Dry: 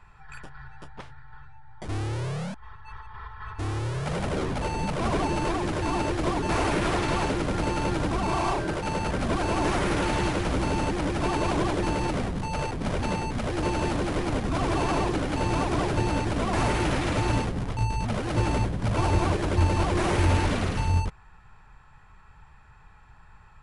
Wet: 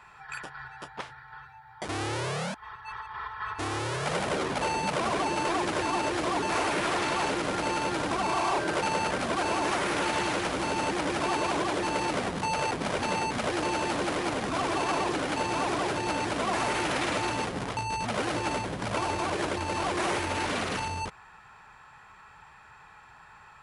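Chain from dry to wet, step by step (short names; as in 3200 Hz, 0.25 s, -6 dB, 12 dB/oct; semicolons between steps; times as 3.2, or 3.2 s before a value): limiter -23.5 dBFS, peak gain reduction 9.5 dB; HPF 540 Hz 6 dB/oct; gain +7 dB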